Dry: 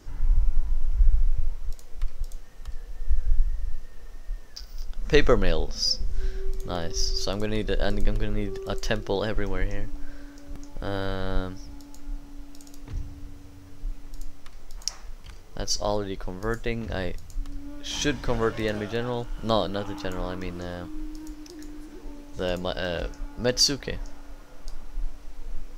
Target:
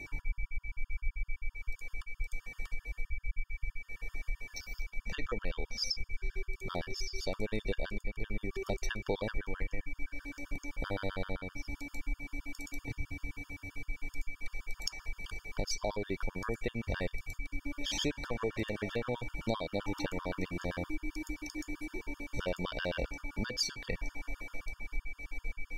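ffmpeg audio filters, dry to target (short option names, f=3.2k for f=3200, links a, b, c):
-af "acompressor=threshold=-31dB:ratio=6,aeval=exprs='val(0)+0.00562*sin(2*PI*2300*n/s)':c=same,afftfilt=real='re*gt(sin(2*PI*7.7*pts/sr)*(1-2*mod(floor(b*sr/1024/910),2)),0)':imag='im*gt(sin(2*PI*7.7*pts/sr)*(1-2*mod(floor(b*sr/1024/910),2)),0)':win_size=1024:overlap=0.75,volume=2.5dB"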